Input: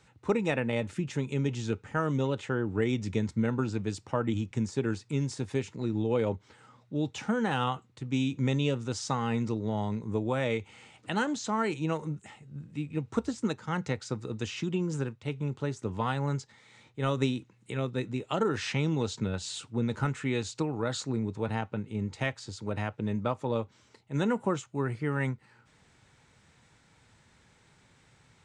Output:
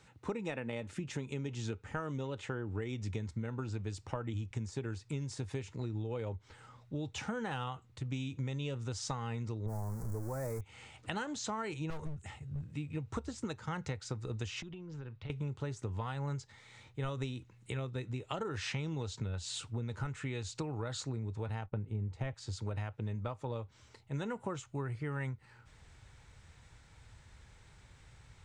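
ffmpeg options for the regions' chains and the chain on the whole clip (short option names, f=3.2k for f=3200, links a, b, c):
-filter_complex "[0:a]asettb=1/sr,asplit=3[a][b][c];[a]atrim=end=9.664[d];[b]atrim=start=9.66:end=10.61,asetpts=PTS-STARTPTS,afade=t=in:d=0.004:c=qsin,afade=t=out:st=0.946:d=0.004:c=qsin,aeval=exprs='val(0)+0.5*0.0251*sgn(val(0))':c=same,asuperstop=centerf=3100:order=4:qfactor=0.51,adynamicequalizer=threshold=0.00316:dfrequency=2000:dqfactor=0.7:tfrequency=2000:tqfactor=0.7:attack=5:release=100:ratio=0.375:range=4:mode=boostabove:tftype=highshelf[e];[c]atrim=start=10.606[f];[d][e]acrossfade=d=0.004:c1=hsin:c2=qsin[g];[g][f]acrossfade=d=0.004:c1=qsin:c2=hsin,asettb=1/sr,asplit=3[h][i][j];[h]atrim=end=11.904[k];[i]atrim=start=11.9:end=12.64,asetpts=PTS-STARTPTS,afade=t=in:d=0.004:c=qsin,afade=t=out:st=0.736:d=0.004:c=qsin,equalizer=f=71:t=o:w=1.5:g=9.5,asoftclip=type=hard:threshold=-33.5dB,agate=range=-33dB:threshold=-54dB:ratio=3:release=100:detection=peak[l];[j]atrim=start=12.636[m];[k][l]acrossfade=d=0.004:c1=hsin:c2=qsin[n];[n][m]acrossfade=d=0.004:c1=qsin:c2=hsin,asettb=1/sr,asplit=3[o][p][q];[o]atrim=end=14.624[r];[p]atrim=start=14.62:end=15.3,asetpts=PTS-STARTPTS,afade=t=in:d=0.004:c=qsin,afade=t=out:st=0.676:d=0.004:c=qsin,lowpass=f=4.8k:w=0.5412,lowpass=f=4.8k:w=1.3066,acompressor=threshold=-41dB:ratio=10:attack=3.2:release=140:knee=1:detection=peak[s];[q]atrim=start=15.296[t];[r][s]acrossfade=d=0.004:c1=hsin:c2=qsin[u];[u][t]acrossfade=d=0.004:c1=qsin:c2=hsin,asettb=1/sr,asplit=3[v][w][x];[v]atrim=end=21.664[y];[w]atrim=start=21.66:end=22.34,asetpts=PTS-STARTPTS,afade=t=in:d=0.004:c=qsin,afade=t=out:st=0.676:d=0.004:c=qsin,agate=range=-33dB:threshold=-50dB:ratio=3:release=100:detection=peak,tiltshelf=f=1.3k:g=6.5[z];[x]atrim=start=22.336[aa];[y][z]acrossfade=d=0.004:c1=hsin:c2=qsin[ab];[ab][aa]acrossfade=d=0.004:c1=qsin:c2=hsin,asubboost=boost=7.5:cutoff=73,acompressor=threshold=-35dB:ratio=6"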